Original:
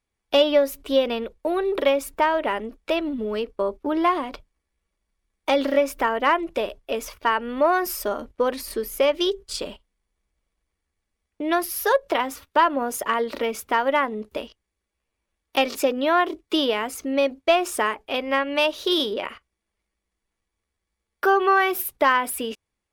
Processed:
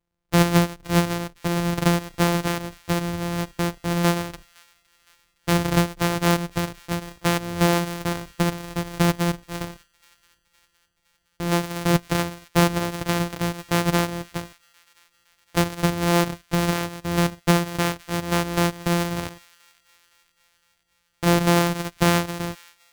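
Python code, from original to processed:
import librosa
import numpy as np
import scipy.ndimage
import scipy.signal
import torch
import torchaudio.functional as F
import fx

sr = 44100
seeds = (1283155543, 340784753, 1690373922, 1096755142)

y = np.r_[np.sort(x[:len(x) // 256 * 256].reshape(-1, 256), axis=1).ravel(), x[len(x) // 256 * 256:]]
y = fx.echo_wet_highpass(y, sr, ms=513, feedback_pct=55, hz=1800.0, wet_db=-23.5)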